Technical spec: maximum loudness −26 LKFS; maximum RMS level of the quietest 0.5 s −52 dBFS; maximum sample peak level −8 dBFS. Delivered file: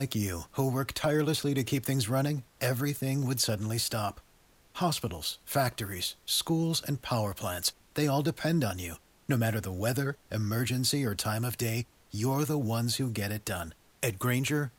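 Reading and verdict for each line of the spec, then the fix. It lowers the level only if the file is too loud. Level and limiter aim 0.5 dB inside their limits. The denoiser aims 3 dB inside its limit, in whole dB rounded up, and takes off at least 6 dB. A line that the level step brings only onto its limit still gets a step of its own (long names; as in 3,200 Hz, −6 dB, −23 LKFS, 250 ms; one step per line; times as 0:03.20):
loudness −30.5 LKFS: in spec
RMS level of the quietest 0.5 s −62 dBFS: in spec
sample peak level −15.0 dBFS: in spec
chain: no processing needed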